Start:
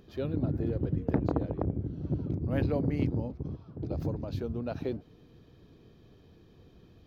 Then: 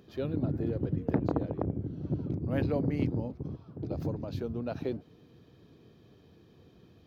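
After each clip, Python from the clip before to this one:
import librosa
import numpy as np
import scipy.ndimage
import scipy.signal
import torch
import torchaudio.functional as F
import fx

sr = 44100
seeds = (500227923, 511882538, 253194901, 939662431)

y = scipy.signal.sosfilt(scipy.signal.butter(2, 88.0, 'highpass', fs=sr, output='sos'), x)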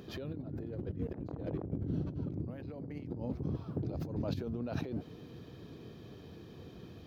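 y = fx.over_compress(x, sr, threshold_db=-40.0, ratio=-1.0)
y = y * librosa.db_to_amplitude(1.0)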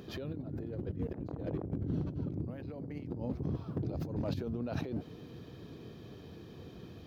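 y = np.clip(x, -10.0 ** (-28.0 / 20.0), 10.0 ** (-28.0 / 20.0))
y = y * librosa.db_to_amplitude(1.0)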